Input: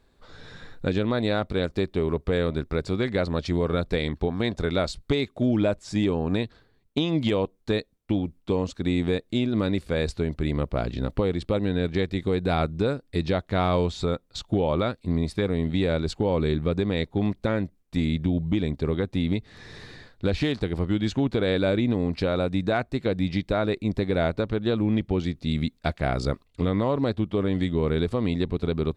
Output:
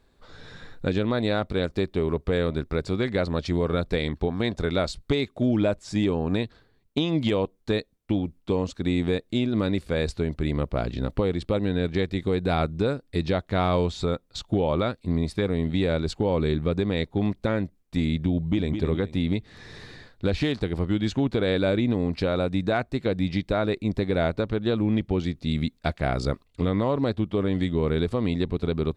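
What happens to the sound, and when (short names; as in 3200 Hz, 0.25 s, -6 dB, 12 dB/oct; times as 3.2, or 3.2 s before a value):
18.36–18.77 echo throw 0.21 s, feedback 30%, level -7 dB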